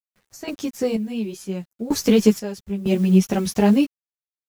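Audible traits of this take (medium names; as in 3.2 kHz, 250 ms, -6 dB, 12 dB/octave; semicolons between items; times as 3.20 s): a quantiser's noise floor 8-bit, dither none; random-step tremolo 2.1 Hz, depth 85%; a shimmering, thickened sound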